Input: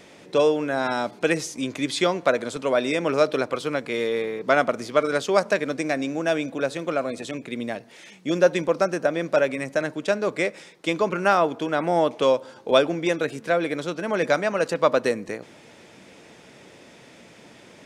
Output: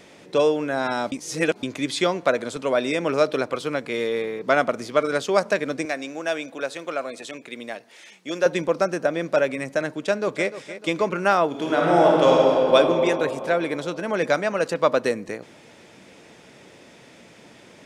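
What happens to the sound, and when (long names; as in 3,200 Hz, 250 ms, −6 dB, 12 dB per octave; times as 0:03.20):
0:01.12–0:01.63: reverse
0:05.85–0:08.46: high-pass filter 600 Hz 6 dB per octave
0:09.96–0:10.48: delay throw 300 ms, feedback 45%, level −13 dB
0:11.48–0:12.75: thrown reverb, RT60 3 s, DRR −4 dB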